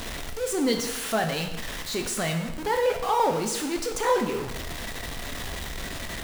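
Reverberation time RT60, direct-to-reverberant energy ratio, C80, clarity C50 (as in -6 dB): 0.95 s, 4.0 dB, 9.5 dB, 7.5 dB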